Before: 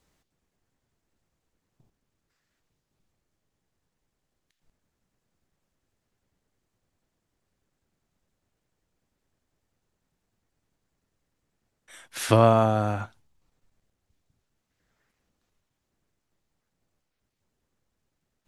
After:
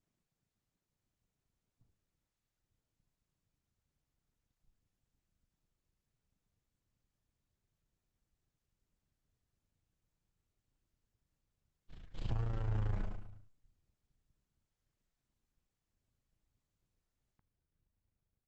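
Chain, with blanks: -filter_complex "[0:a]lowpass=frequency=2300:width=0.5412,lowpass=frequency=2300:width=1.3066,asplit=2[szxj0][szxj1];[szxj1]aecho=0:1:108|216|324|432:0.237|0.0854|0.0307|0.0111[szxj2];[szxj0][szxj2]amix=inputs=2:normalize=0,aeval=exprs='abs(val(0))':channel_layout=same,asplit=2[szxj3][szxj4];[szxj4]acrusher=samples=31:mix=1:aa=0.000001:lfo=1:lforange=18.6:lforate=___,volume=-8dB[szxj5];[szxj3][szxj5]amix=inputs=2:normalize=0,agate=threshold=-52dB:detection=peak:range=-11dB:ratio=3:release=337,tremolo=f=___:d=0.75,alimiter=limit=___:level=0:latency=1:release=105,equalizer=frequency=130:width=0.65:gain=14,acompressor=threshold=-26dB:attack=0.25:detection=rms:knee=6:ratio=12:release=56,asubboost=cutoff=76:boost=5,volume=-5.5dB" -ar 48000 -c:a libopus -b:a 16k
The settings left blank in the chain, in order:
1.2, 28, -8dB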